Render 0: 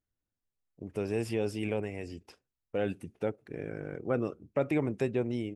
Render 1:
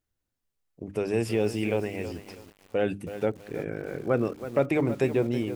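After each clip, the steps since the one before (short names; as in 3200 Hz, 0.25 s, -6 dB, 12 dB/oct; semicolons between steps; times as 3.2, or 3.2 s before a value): notches 50/100/150/200/250/300 Hz; lo-fi delay 0.324 s, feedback 35%, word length 8-bit, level -11.5 dB; gain +5.5 dB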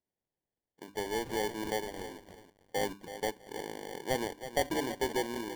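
HPF 320 Hz 12 dB/oct; sample-and-hold 34×; gain -5.5 dB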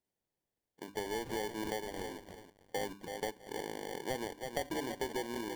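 compressor 3:1, threshold -37 dBFS, peak gain reduction 10 dB; gain +1.5 dB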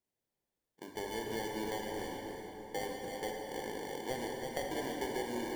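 plate-style reverb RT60 4.5 s, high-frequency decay 0.6×, DRR 0 dB; gain -2.5 dB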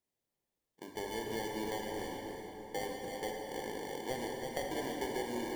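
notch 1500 Hz, Q 12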